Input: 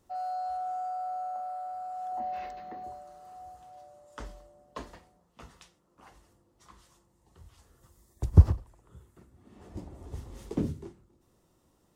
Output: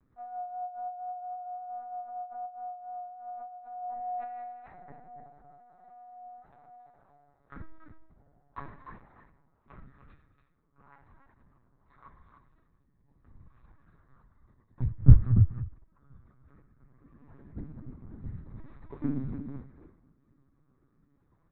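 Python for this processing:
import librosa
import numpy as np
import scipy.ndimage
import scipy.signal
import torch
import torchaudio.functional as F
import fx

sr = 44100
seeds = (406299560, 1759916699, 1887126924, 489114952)

p1 = scipy.signal.sosfilt(scipy.signal.butter(4, 46.0, 'highpass', fs=sr, output='sos'), x)
p2 = fx.high_shelf(p1, sr, hz=3000.0, db=-5.0)
p3 = fx.rider(p2, sr, range_db=3, speed_s=2.0)
p4 = p2 + F.gain(torch.from_numpy(p3), -1.5).numpy()
p5 = fx.rotary_switch(p4, sr, hz=8.0, then_hz=0.7, switch_at_s=1.31)
p6 = fx.fixed_phaser(p5, sr, hz=1300.0, stages=4)
p7 = fx.stretch_grains(p6, sr, factor=1.8, grain_ms=32.0)
p8 = fx.echo_multitap(p7, sr, ms=(43, 232, 292), db=(-15.0, -19.5, -8.0))
p9 = fx.lpc_vocoder(p8, sr, seeds[0], excitation='pitch_kept', order=10)
y = F.gain(torch.from_numpy(p9), -1.0).numpy()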